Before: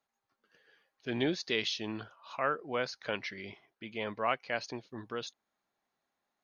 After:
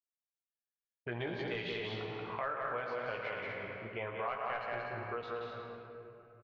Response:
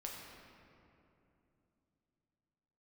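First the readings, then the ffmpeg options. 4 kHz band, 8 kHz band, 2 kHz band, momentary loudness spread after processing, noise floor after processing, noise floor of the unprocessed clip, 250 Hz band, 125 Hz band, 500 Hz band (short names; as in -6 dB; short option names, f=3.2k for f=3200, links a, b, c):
-9.0 dB, n/a, -2.0 dB, 10 LU, under -85 dBFS, under -85 dBFS, -7.5 dB, +0.5 dB, -2.0 dB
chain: -filter_complex "[0:a]afwtdn=0.00501,asplit=2[a][b];[b]adelay=17,volume=-5dB[c];[a][c]amix=inputs=2:normalize=0,asplit=2[d][e];[e]aecho=0:1:110|220|330|440|550|660:0.282|0.155|0.0853|0.0469|0.0258|0.0142[f];[d][f]amix=inputs=2:normalize=0,volume=19.5dB,asoftclip=hard,volume=-19.5dB,lowpass=2.2k,equalizer=f=260:t=o:w=0.89:g=-13.5,agate=range=-33dB:threshold=-59dB:ratio=3:detection=peak,aecho=1:1:180.8|242:0.631|0.447,asplit=2[g][h];[1:a]atrim=start_sample=2205,lowpass=4.9k[i];[h][i]afir=irnorm=-1:irlink=0,volume=1.5dB[j];[g][j]amix=inputs=2:normalize=0,acompressor=threshold=-39dB:ratio=3,volume=1dB"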